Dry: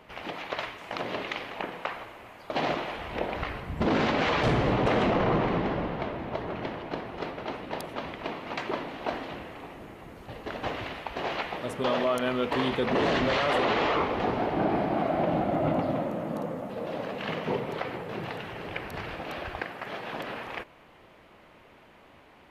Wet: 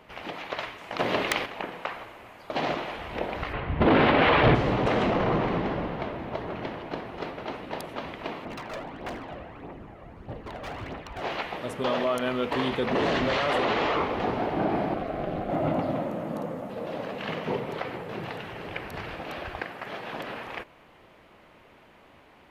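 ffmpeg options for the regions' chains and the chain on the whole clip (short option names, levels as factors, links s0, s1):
-filter_complex "[0:a]asettb=1/sr,asplit=3[s0][s1][s2];[s0]atrim=end=0.994[s3];[s1]atrim=start=0.99:end=1.46,asetpts=PTS-STARTPTS,afade=t=in:d=0.004:c=qsin,afade=t=out:st=0.466:d=0.004:c=qsin,aeval=exprs='(mod(7.5*val(0)+1,2)-1)/7.5':c=same,acontrast=80[s4];[s2]atrim=start=1.456[s5];[s3][s4]acrossfade=d=0.004:c1=hsin:c2=qsin[s6];[s6][s5]acrossfade=d=0.004:c1=qsin:c2=hsin,asettb=1/sr,asplit=3[s7][s8][s9];[s7]atrim=end=3.534[s10];[s8]atrim=start=3.53:end=4.55,asetpts=PTS-STARTPTS,afade=t=in:d=0.004:c=qsin,afade=t=out:st=1.016:d=0.004:c=qsin,lowpass=f=3500:w=0.5412,lowpass=f=3500:w=1.3066,equalizer=f=200:w=5.8:g=-7.5,acontrast=57[s11];[s9]atrim=start=4.546[s12];[s10][s11]acrossfade=d=0.004:c1=hsin:c2=qsin[s13];[s13][s12]acrossfade=d=0.004:c1=qsin:c2=hsin,asettb=1/sr,asplit=3[s14][s15][s16];[s14]atrim=end=8.454[s17];[s15]atrim=start=8.45:end=11.22,asetpts=PTS-STARTPTS,afade=t=in:d=0.004:c=qsin,afade=t=out:st=2.766:d=0.004:c=qsin,lowpass=f=1300:p=1,aeval=exprs='0.0266*(abs(mod(val(0)/0.0266+3,4)-2)-1)':c=same,aphaser=in_gain=1:out_gain=1:delay=1.8:decay=0.46:speed=1.6:type=triangular[s18];[s16]atrim=start=11.216[s19];[s17][s18]acrossfade=d=0.004:c1=hsin:c2=qsin[s20];[s20][s19]acrossfade=d=0.004:c1=qsin:c2=hsin,asettb=1/sr,asplit=3[s21][s22][s23];[s21]atrim=end=14.944[s24];[s22]atrim=start=14.94:end=15.5,asetpts=PTS-STARTPTS,afade=t=in:d=0.004:c=qsin,afade=t=out:st=0.556:d=0.004:c=qsin,tremolo=f=210:d=0.919,asuperstop=centerf=920:order=4:qfactor=4.1[s25];[s23]atrim=start=15.496[s26];[s24][s25]acrossfade=d=0.004:c1=hsin:c2=qsin[s27];[s27][s26]acrossfade=d=0.004:c1=qsin:c2=hsin"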